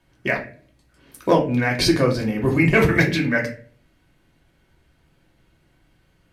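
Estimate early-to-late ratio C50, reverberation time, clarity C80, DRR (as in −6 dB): 10.0 dB, 0.45 s, 14.5 dB, −0.5 dB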